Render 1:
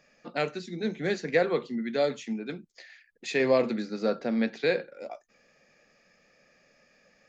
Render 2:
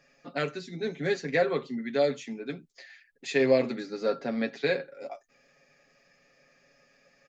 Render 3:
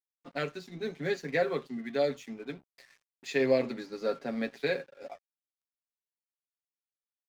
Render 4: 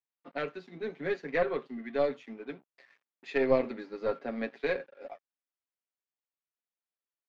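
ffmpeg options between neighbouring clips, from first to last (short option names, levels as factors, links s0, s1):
-af "aecho=1:1:7.3:0.69,volume=0.794"
-af "aeval=exprs='sgn(val(0))*max(abs(val(0))-0.00251,0)':c=same,volume=0.708"
-af "highpass=220,lowpass=2700,aeval=exprs='0.2*(cos(1*acos(clip(val(0)/0.2,-1,1)))-cos(1*PI/2))+0.0501*(cos(2*acos(clip(val(0)/0.2,-1,1)))-cos(2*PI/2))':c=same"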